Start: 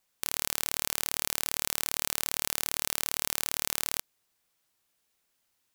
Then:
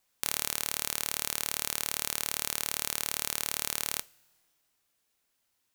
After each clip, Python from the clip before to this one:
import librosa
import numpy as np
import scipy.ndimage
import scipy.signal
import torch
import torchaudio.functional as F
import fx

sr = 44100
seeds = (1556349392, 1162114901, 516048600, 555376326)

y = fx.rider(x, sr, range_db=10, speed_s=0.5)
y = fx.rev_double_slope(y, sr, seeds[0], early_s=0.3, late_s=2.0, knee_db=-18, drr_db=16.5)
y = y * librosa.db_to_amplitude(-1.0)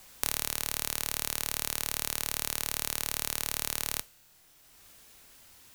y = fx.low_shelf(x, sr, hz=110.0, db=10.0)
y = fx.band_squash(y, sr, depth_pct=70)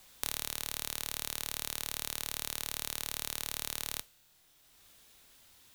y = fx.peak_eq(x, sr, hz=3600.0, db=5.0, octaves=0.42)
y = y * librosa.db_to_amplitude(-5.5)